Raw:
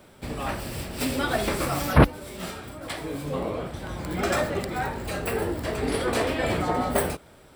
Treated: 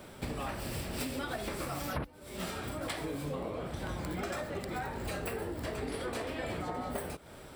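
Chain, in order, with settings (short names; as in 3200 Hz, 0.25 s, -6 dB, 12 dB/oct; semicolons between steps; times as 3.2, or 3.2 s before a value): compressor 16:1, threshold -36 dBFS, peak gain reduction 26.5 dB; gain +2.5 dB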